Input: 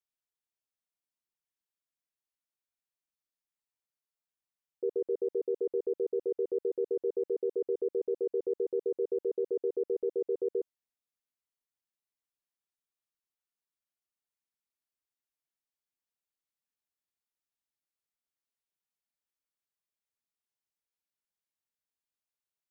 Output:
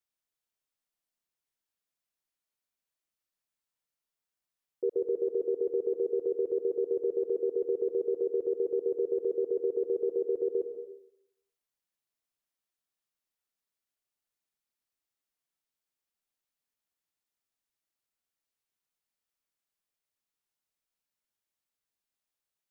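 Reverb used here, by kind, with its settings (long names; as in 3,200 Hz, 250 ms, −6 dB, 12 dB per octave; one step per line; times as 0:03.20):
comb and all-pass reverb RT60 0.77 s, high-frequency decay 0.95×, pre-delay 90 ms, DRR 6.5 dB
level +2 dB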